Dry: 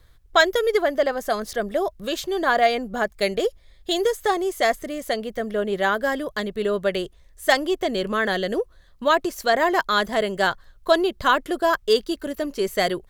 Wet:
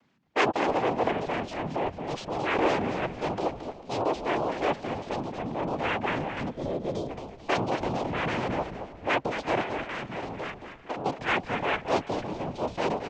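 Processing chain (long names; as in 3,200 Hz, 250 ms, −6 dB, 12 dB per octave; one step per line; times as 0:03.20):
cochlear-implant simulation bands 4
transient designer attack −5 dB, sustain +5 dB
0:09.61–0:11.06: downward compressor 6 to 1, threshold −27 dBFS, peak gain reduction 13 dB
echo with shifted repeats 223 ms, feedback 34%, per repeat −70 Hz, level −8 dB
0:06.49–0:07.10: gain on a spectral selection 730–3,100 Hz −11 dB
high-frequency loss of the air 190 metres
single-tap delay 336 ms −20 dB
level −4.5 dB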